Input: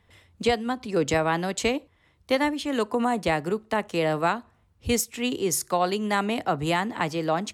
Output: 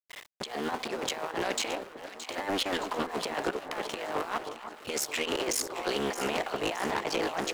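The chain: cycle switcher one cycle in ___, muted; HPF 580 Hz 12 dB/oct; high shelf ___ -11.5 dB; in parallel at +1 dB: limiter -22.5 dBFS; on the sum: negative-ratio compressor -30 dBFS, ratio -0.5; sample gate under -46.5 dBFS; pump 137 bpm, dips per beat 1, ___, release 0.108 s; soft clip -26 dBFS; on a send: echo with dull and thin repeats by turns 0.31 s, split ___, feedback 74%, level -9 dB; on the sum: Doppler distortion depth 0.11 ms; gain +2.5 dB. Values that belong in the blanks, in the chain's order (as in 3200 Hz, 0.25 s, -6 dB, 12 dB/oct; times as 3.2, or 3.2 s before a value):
3, 6700 Hz, -18 dB, 1400 Hz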